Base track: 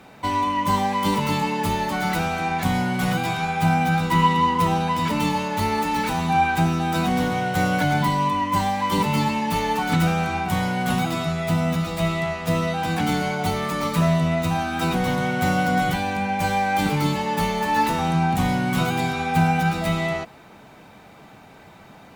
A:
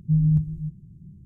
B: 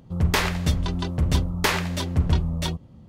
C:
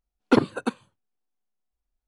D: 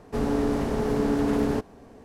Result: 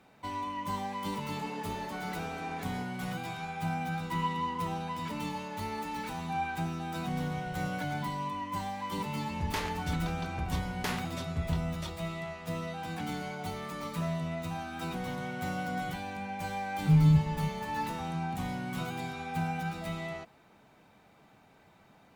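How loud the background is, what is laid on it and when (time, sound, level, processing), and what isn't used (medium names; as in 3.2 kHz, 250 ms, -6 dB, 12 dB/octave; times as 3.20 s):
base track -14 dB
1.23 s: add D -17 dB + frequency weighting A
6.99 s: add A -11 dB + peak limiter -22.5 dBFS
9.20 s: add B -13.5 dB
16.79 s: add A -2.5 dB
not used: C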